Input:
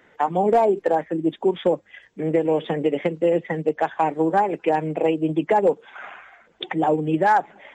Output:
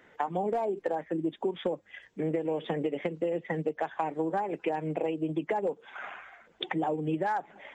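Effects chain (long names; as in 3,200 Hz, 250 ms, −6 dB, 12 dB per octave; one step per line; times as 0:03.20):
downward compressor, threshold −24 dBFS, peak gain reduction 10.5 dB
level −3 dB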